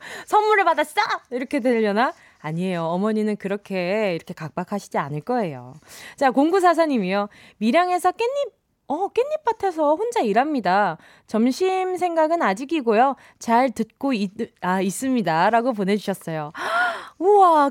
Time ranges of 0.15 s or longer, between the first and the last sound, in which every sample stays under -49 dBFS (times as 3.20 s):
8.49–8.89 s